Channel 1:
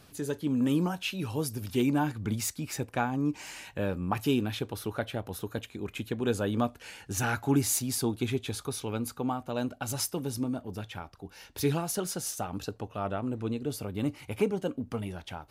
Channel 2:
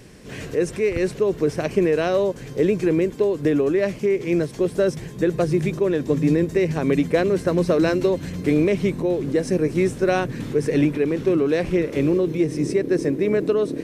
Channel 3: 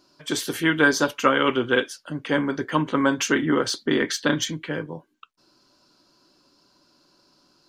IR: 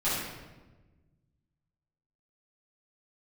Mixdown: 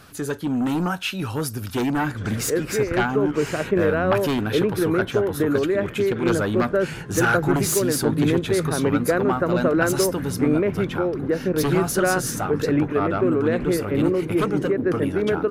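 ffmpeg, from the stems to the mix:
-filter_complex "[0:a]aeval=exprs='0.2*sin(PI/2*2.51*val(0)/0.2)':c=same,volume=-5dB[a];[1:a]lowpass=1.9k,acompressor=mode=upward:threshold=-33dB:ratio=2.5,adelay=1950,volume=-2dB[b];[2:a]alimiter=limit=-14.5dB:level=0:latency=1,adelay=1900,volume=-19.5dB[c];[a][b][c]amix=inputs=3:normalize=0,equalizer=f=1.4k:t=o:w=0.62:g=9"

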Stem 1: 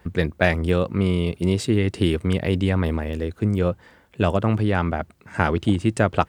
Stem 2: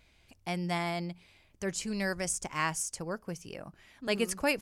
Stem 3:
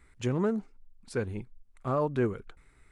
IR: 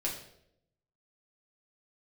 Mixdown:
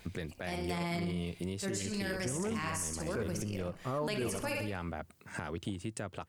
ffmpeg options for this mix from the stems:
-filter_complex "[0:a]highpass=f=77:w=0.5412,highpass=f=77:w=1.3066,volume=-7dB[a];[1:a]volume=3dB,asplit=3[b][c][d];[c]volume=-15.5dB[e];[d]volume=-13dB[f];[2:a]adelay=2000,volume=-3dB[g];[a][b]amix=inputs=2:normalize=0,highshelf=f=4.6k:g=10.5,acompressor=threshold=-33dB:ratio=10,volume=0dB[h];[3:a]atrim=start_sample=2205[i];[e][i]afir=irnorm=-1:irlink=0[j];[f]aecho=0:1:64|128|192|256|320|384:1|0.46|0.212|0.0973|0.0448|0.0206[k];[g][h][j][k]amix=inputs=4:normalize=0,alimiter=level_in=2.5dB:limit=-24dB:level=0:latency=1:release=29,volume=-2.5dB"

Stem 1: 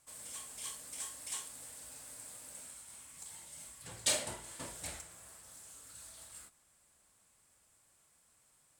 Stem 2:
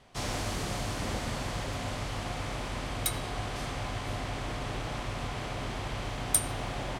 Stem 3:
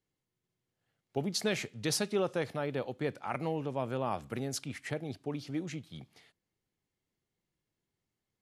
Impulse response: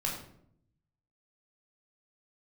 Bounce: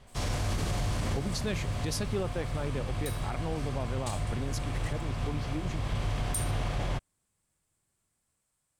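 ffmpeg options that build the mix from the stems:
-filter_complex "[0:a]volume=-10.5dB[a];[1:a]asoftclip=type=tanh:threshold=-12dB,volume=-2.5dB,asplit=2[b][c];[c]volume=-11dB[d];[2:a]volume=-3dB,asplit=2[e][f];[f]apad=whole_len=308326[g];[b][g]sidechaincompress=threshold=-45dB:ratio=8:attack=41:release=359[h];[3:a]atrim=start_sample=2205[i];[d][i]afir=irnorm=-1:irlink=0[j];[a][h][e][j]amix=inputs=4:normalize=0,lowshelf=f=160:g=9,alimiter=limit=-22dB:level=0:latency=1:release=23"

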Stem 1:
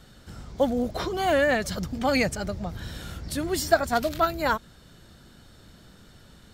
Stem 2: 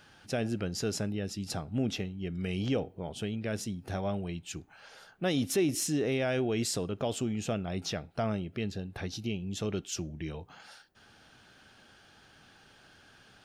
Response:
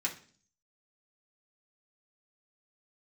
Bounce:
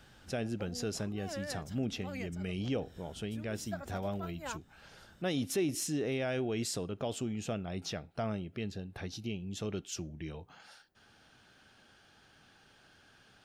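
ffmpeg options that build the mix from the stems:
-filter_complex "[0:a]equalizer=f=10k:w=5.2:g=-5.5,bandreject=f=4.3k:w=6.4,volume=-9.5dB[a];[1:a]volume=-4dB,asplit=2[b][c];[c]apad=whole_len=288289[d];[a][d]sidechaincompress=threshold=-53dB:ratio=4:attack=50:release=249[e];[e][b]amix=inputs=2:normalize=0"

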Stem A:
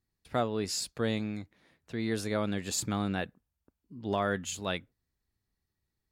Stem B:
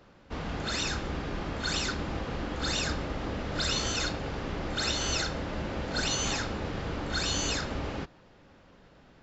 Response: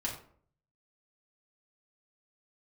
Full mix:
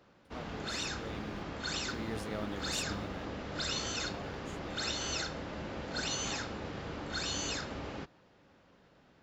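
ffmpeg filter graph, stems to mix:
-filter_complex "[0:a]acrusher=bits=8:mix=0:aa=0.5,volume=-9dB,afade=t=in:st=0.94:d=0.53:silence=0.298538,afade=t=out:st=2.75:d=0.53:silence=0.298538[a];[1:a]highpass=f=95:p=1,volume=-5.5dB[b];[a][b]amix=inputs=2:normalize=0"

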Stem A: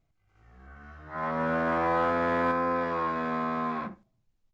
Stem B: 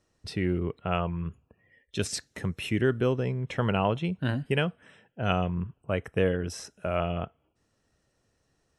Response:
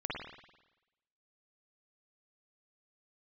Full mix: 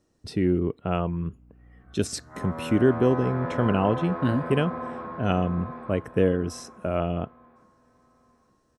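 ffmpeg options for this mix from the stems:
-filter_complex "[0:a]lowpass=2.8k,aeval=exprs='val(0)+0.00447*(sin(2*PI*60*n/s)+sin(2*PI*2*60*n/s)/2+sin(2*PI*3*60*n/s)/3+sin(2*PI*4*60*n/s)/4+sin(2*PI*5*60*n/s)/5)':c=same,adelay=1200,volume=-5.5dB,asplit=2[a][b];[b]volume=-3dB[c];[1:a]equalizer=f=280:w=1.2:g=7,volume=1dB[d];[c]aecho=0:1:859|1718|2577|3436|4295:1|0.39|0.152|0.0593|0.0231[e];[a][d][e]amix=inputs=3:normalize=0,equalizer=f=2.4k:t=o:w=1.5:g=-5"

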